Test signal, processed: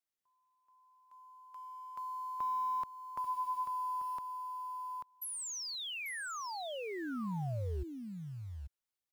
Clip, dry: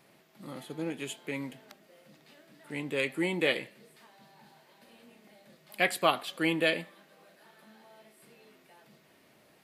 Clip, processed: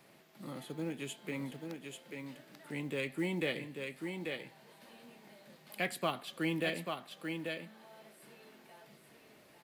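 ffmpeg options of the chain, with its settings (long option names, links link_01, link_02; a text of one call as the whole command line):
ffmpeg -i in.wav -filter_complex "[0:a]acrusher=bits=7:mode=log:mix=0:aa=0.000001,aecho=1:1:839:0.447,acrossover=split=240[link_01][link_02];[link_02]acompressor=threshold=-48dB:ratio=1.5[link_03];[link_01][link_03]amix=inputs=2:normalize=0" out.wav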